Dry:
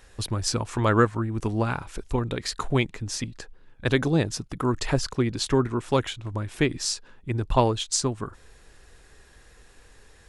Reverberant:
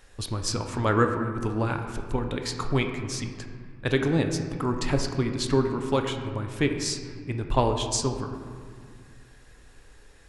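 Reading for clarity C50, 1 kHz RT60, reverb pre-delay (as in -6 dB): 6.5 dB, 2.0 s, 4 ms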